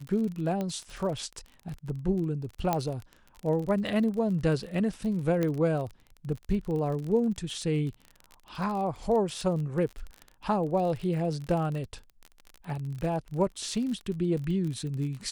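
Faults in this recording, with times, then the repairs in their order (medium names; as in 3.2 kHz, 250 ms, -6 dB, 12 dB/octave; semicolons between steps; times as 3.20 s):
crackle 32 per s -34 dBFS
0.61 s: pop -20 dBFS
2.73 s: pop -12 dBFS
5.43 s: pop -16 dBFS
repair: de-click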